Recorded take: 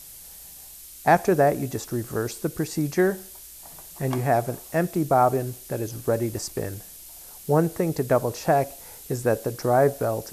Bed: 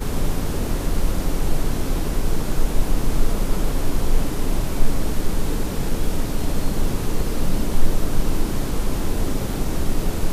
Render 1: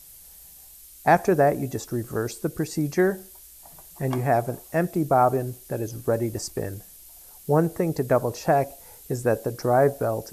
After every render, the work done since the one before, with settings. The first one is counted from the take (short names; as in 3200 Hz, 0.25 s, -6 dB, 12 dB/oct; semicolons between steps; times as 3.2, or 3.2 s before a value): denoiser 6 dB, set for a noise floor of -44 dBFS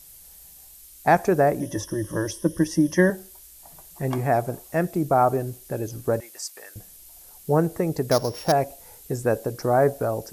1.6–3.1 ripple EQ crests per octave 1.2, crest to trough 16 dB; 6.2–6.76 HPF 1300 Hz; 8.11–8.52 sample sorter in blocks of 8 samples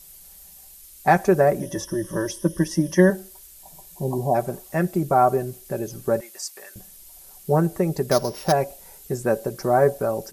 3.65–4.33 spectral repair 1100–9600 Hz before; comb 5.2 ms, depth 55%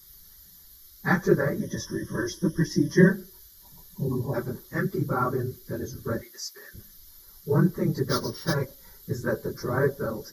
phase scrambler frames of 50 ms; fixed phaser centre 2600 Hz, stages 6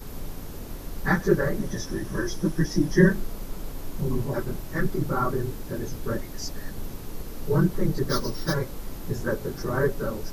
add bed -14 dB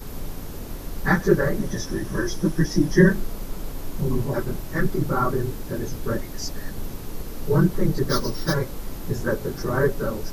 gain +3 dB; limiter -3 dBFS, peak gain reduction 2 dB